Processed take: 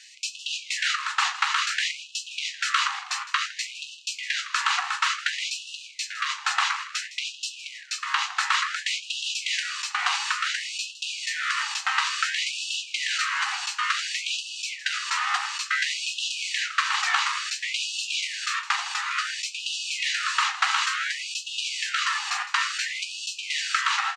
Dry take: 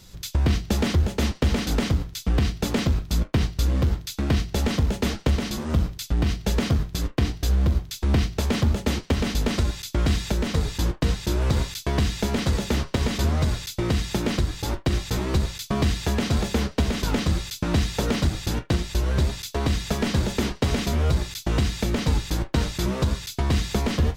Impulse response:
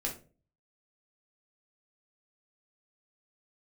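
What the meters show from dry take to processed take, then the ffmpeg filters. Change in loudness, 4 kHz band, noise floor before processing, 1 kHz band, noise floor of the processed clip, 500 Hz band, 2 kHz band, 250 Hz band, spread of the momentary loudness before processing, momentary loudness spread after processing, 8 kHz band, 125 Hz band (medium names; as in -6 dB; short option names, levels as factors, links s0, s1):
-1.0 dB, +6.0 dB, -47 dBFS, +6.5 dB, -43 dBFS, under -30 dB, +9.5 dB, under -40 dB, 3 LU, 7 LU, +4.0 dB, under -40 dB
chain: -filter_complex "[0:a]highpass=390,equalizer=f=970:t=q:w=4:g=5,equalizer=f=1900:t=q:w=4:g=4,equalizer=f=4300:t=q:w=4:g=-7,lowpass=f=6700:w=0.5412,lowpass=f=6700:w=1.3066,aeval=exprs='val(0)*sin(2*PI*880*n/s)':c=same,asplit=5[s0][s1][s2][s3][s4];[s1]adelay=160,afreqshift=-40,volume=0.178[s5];[s2]adelay=320,afreqshift=-80,volume=0.075[s6];[s3]adelay=480,afreqshift=-120,volume=0.0313[s7];[s4]adelay=640,afreqshift=-160,volume=0.0132[s8];[s0][s5][s6][s7][s8]amix=inputs=5:normalize=0,asplit=2[s9][s10];[1:a]atrim=start_sample=2205[s11];[s10][s11]afir=irnorm=-1:irlink=0,volume=0.422[s12];[s9][s12]amix=inputs=2:normalize=0,afftfilt=real='re*gte(b*sr/1024,720*pow(2600/720,0.5+0.5*sin(2*PI*0.57*pts/sr)))':imag='im*gte(b*sr/1024,720*pow(2600/720,0.5+0.5*sin(2*PI*0.57*pts/sr)))':win_size=1024:overlap=0.75,volume=2.37"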